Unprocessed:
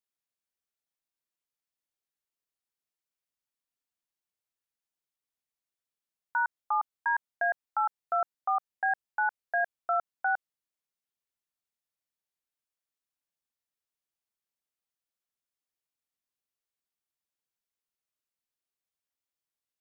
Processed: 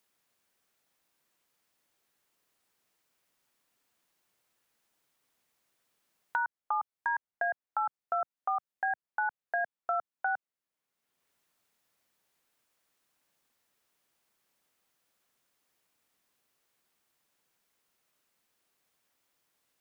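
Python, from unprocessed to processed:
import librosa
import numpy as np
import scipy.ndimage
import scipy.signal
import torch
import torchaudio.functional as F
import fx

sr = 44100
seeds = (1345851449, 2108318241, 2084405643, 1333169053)

y = fx.band_squash(x, sr, depth_pct=70)
y = y * librosa.db_to_amplitude(-3.0)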